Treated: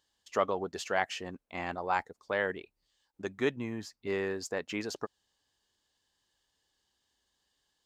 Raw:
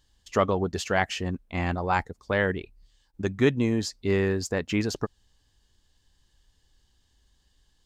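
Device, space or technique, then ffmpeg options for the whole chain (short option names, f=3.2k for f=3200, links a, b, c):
filter by subtraction: -filter_complex "[0:a]asettb=1/sr,asplit=3[a][b][c];[a]atrim=end=3.564[d];[b]atrim=start=3.56:end=4.07,asetpts=PTS-STARTPTS,afade=t=in:d=0.004:c=qsin,afade=t=out:st=0.506:d=0.004:c=qsin,equalizer=f=125:t=o:w=1:g=5,equalizer=f=500:t=o:w=1:g=-9,equalizer=f=4k:t=o:w=1:g=-7,equalizer=f=8k:t=o:w=1:g=-7[e];[c]atrim=start=4.066[f];[d][e]acrossfade=d=0.004:c1=hsin:c2=qsin[g];[g][f]acrossfade=d=0.004:c1=qsin:c2=hsin,asplit=2[h][i];[i]lowpass=640,volume=-1[j];[h][j]amix=inputs=2:normalize=0,volume=-6.5dB"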